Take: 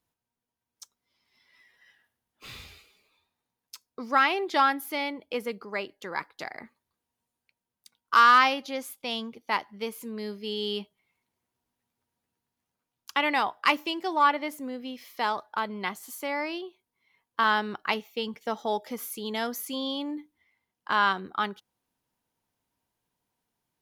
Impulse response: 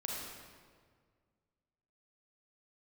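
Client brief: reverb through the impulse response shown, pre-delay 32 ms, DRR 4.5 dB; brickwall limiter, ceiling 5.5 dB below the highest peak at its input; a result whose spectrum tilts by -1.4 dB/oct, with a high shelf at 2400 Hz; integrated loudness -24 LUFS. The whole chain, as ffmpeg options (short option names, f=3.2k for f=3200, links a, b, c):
-filter_complex "[0:a]highshelf=f=2.4k:g=-6.5,alimiter=limit=-16dB:level=0:latency=1,asplit=2[a][b];[1:a]atrim=start_sample=2205,adelay=32[c];[b][c]afir=irnorm=-1:irlink=0,volume=-6.5dB[d];[a][d]amix=inputs=2:normalize=0,volume=6dB"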